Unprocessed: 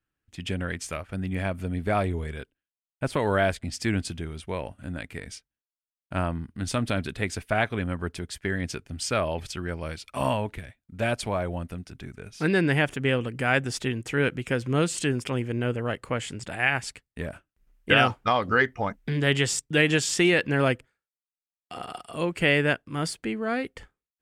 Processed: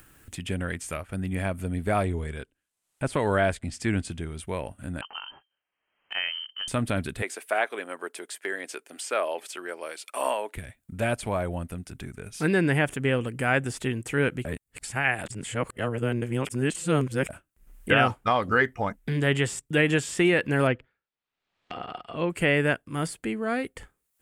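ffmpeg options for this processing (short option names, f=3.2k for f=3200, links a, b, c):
-filter_complex "[0:a]asettb=1/sr,asplit=3[a][b][c];[a]atrim=end=2.034[d];[b]atrim=start=2.03:end=4.39,asetpts=PTS-STARTPTS,afade=t=in:d=0.004:c=qsin,afade=t=out:st=2.356:d=0.004:c=qsin,lowpass=8.8k[e];[c]atrim=start=4.386[f];[d][e]acrossfade=d=0.004:c1=hsin:c2=qsin[g];[g][f]acrossfade=d=0.004:c1=qsin:c2=hsin,asettb=1/sr,asplit=3[h][i][j];[h]atrim=end=5.014[k];[i]atrim=start=5.01:end=6.68,asetpts=PTS-STARTPTS,afade=t=in:d=0.004:c=qsin,afade=t=out:st=1.666:d=0.004:c=qsin,lowpass=f=2.7k:t=q:w=0.5098,lowpass=f=2.7k:t=q:w=0.6013,lowpass=f=2.7k:t=q:w=0.9,lowpass=f=2.7k:t=q:w=2.563,afreqshift=-3200[l];[j]atrim=start=6.676[m];[k][l]acrossfade=d=0.004:c1=hsin:c2=qsin[n];[n][m]acrossfade=d=0.004:c1=qsin:c2=hsin,asettb=1/sr,asplit=3[o][p][q];[o]atrim=end=7.224[r];[p]atrim=start=7.22:end=10.55,asetpts=PTS-STARTPTS,afade=t=in:d=0.004:c=qsin,afade=t=out:st=3.326:d=0.004:c=qsin,highpass=f=370:w=0.5412,highpass=f=370:w=1.3066[s];[q]atrim=start=10.546[t];[r][s]acrossfade=d=0.004:c1=hsin:c2=qsin[u];[u][t]acrossfade=d=0.004:c1=qsin:c2=hsin,asettb=1/sr,asplit=3[v][w][x];[v]atrim=end=20.674[y];[w]atrim=start=20.67:end=22.3,asetpts=PTS-STARTPTS,afade=t=in:d=0.004:c=qsin,afade=t=out:st=1.626:d=0.004:c=qsin,lowpass=f=3.9k:w=0.5412,lowpass=f=3.9k:w=1.3066[z];[x]atrim=start=22.296[aa];[y][z]acrossfade=d=0.004:c1=hsin:c2=qsin[ab];[ab][aa]acrossfade=d=0.004:c1=qsin:c2=hsin,asplit=3[ac][ad][ae];[ac]atrim=end=14.452[af];[ad]atrim=start=14.448:end=17.292,asetpts=PTS-STARTPTS,areverse[ag];[ae]atrim=start=17.288[ah];[af][ag]acrossfade=d=0.004:c1=hsin:c2=hsin[ai];[ai][ah]acrossfade=d=0.004:c1=hsin:c2=hsin,acrossover=split=3000[aj][ak];[ak]acompressor=threshold=-39dB:ratio=4:attack=1:release=60[al];[aj][al]amix=inputs=2:normalize=0,highshelf=f=6.8k:t=q:w=1.5:g=6.5,acompressor=mode=upward:threshold=-33dB:ratio=2.5"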